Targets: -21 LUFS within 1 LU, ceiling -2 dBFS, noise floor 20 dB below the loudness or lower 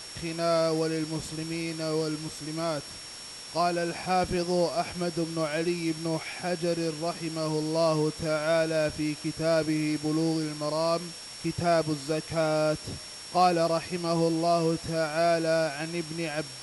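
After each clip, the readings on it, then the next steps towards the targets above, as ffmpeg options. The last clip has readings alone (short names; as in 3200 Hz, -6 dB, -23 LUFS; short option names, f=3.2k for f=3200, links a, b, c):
steady tone 5500 Hz; tone level -43 dBFS; noise floor -42 dBFS; noise floor target -49 dBFS; loudness -28.5 LUFS; peak -12.5 dBFS; loudness target -21.0 LUFS
-> -af "bandreject=f=5.5k:w=30"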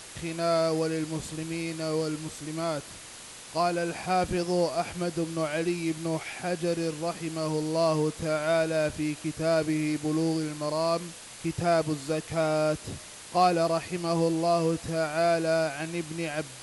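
steady tone none; noise floor -45 dBFS; noise floor target -49 dBFS
-> -af "afftdn=nr=6:nf=-45"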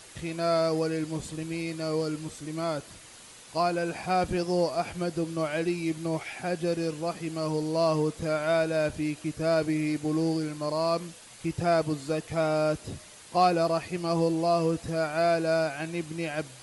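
noise floor -49 dBFS; loudness -28.5 LUFS; peak -12.5 dBFS; loudness target -21.0 LUFS
-> -af "volume=7.5dB"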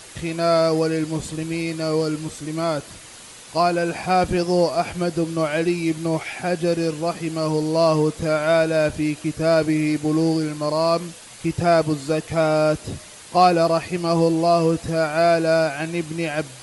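loudness -21.0 LUFS; peak -5.0 dBFS; noise floor -42 dBFS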